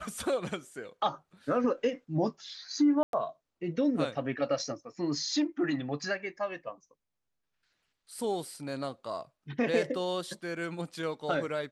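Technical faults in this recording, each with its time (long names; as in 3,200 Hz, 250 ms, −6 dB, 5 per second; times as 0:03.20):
0:03.03–0:03.13: drop-out 102 ms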